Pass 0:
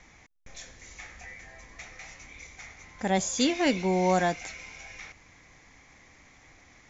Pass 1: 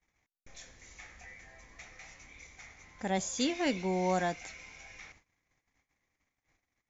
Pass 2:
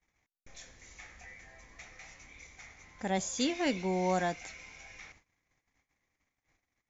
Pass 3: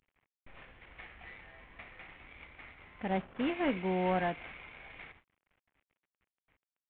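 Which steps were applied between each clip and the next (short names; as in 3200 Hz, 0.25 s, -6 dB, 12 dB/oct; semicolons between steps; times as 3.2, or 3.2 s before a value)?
gate -52 dBFS, range -29 dB; gain -6 dB
nothing audible
CVSD 16 kbps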